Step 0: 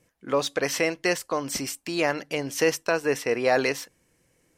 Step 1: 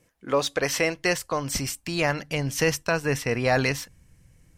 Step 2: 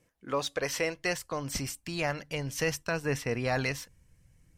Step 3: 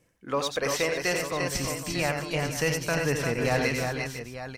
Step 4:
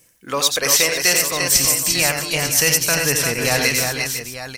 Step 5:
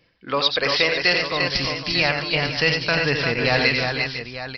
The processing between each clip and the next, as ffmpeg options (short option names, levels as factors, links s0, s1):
-af "asubboost=boost=12:cutoff=120,volume=1.19"
-af "aphaser=in_gain=1:out_gain=1:delay=2.1:decay=0.21:speed=0.63:type=sinusoidal,volume=0.447"
-af "aecho=1:1:88|316|348|499|896:0.501|0.237|0.562|0.237|0.282,volume=1.33"
-af "crystalizer=i=6:c=0,volume=1.41"
-af "aresample=11025,aresample=44100"